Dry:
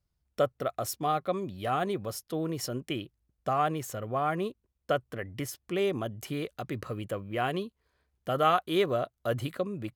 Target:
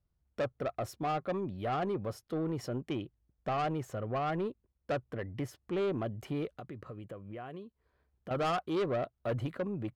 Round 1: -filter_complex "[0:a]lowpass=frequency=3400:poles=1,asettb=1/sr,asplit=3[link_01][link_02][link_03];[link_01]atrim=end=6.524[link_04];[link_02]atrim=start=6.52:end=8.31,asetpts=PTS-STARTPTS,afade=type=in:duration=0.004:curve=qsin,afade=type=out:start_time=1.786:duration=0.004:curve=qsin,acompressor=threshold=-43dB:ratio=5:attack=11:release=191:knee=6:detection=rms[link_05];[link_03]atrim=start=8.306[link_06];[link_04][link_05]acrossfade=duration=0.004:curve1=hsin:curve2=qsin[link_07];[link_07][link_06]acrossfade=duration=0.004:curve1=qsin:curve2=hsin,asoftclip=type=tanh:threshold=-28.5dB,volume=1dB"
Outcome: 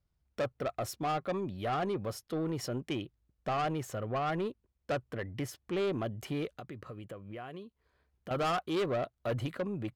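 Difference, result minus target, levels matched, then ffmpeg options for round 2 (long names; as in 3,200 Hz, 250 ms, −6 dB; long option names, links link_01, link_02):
4,000 Hz band +3.5 dB
-filter_complex "[0:a]lowpass=frequency=1300:poles=1,asettb=1/sr,asplit=3[link_01][link_02][link_03];[link_01]atrim=end=6.524[link_04];[link_02]atrim=start=6.52:end=8.31,asetpts=PTS-STARTPTS,afade=type=in:duration=0.004:curve=qsin,afade=type=out:start_time=1.786:duration=0.004:curve=qsin,acompressor=threshold=-43dB:ratio=5:attack=11:release=191:knee=6:detection=rms[link_05];[link_03]atrim=start=8.306[link_06];[link_04][link_05]acrossfade=duration=0.004:curve1=hsin:curve2=qsin[link_07];[link_07][link_06]acrossfade=duration=0.004:curve1=qsin:curve2=hsin,asoftclip=type=tanh:threshold=-28.5dB,volume=1dB"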